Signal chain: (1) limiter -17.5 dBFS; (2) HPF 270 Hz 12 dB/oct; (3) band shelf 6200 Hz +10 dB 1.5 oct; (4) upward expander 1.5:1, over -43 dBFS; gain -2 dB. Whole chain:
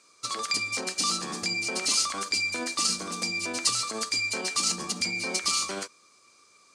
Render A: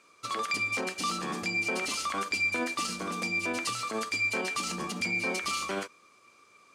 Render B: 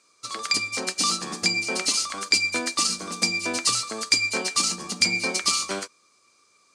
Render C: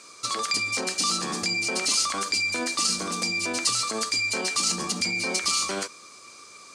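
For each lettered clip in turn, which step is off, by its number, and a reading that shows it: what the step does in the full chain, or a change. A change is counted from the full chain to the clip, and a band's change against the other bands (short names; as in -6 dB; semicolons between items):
3, 8 kHz band -11.5 dB; 1, mean gain reduction 2.5 dB; 4, crest factor change -2.5 dB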